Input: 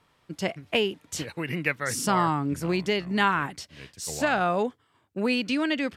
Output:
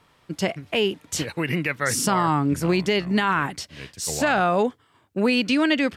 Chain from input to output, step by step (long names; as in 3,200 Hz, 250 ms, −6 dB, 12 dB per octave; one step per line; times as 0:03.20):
brickwall limiter −17 dBFS, peak gain reduction 8.5 dB
level +6 dB